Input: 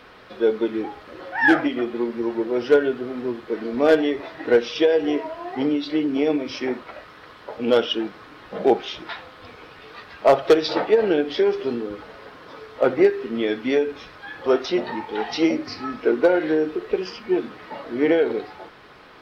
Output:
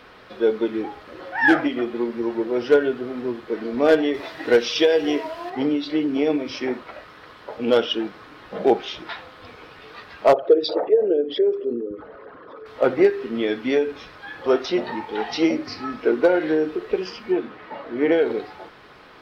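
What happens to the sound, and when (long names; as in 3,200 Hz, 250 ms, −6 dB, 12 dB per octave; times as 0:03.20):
0:04.14–0:05.50: high-shelf EQ 3,100 Hz +10.5 dB
0:10.33–0:12.66: spectral envelope exaggerated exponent 2
0:17.32–0:18.12: bass and treble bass −3 dB, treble −10 dB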